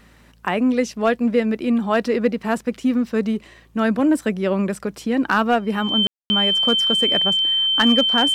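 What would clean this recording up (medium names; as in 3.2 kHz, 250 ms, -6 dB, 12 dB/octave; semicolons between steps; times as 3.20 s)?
clip repair -7.5 dBFS; de-hum 56.2 Hz, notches 3; band-stop 3.1 kHz, Q 30; room tone fill 6.07–6.30 s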